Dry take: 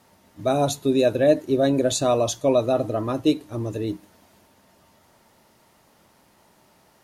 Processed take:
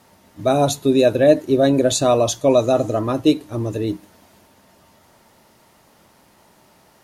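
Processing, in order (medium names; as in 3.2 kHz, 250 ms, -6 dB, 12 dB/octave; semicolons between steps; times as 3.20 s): 2.50–2.99 s: peaking EQ 6.8 kHz +13 dB 0.44 oct; trim +4.5 dB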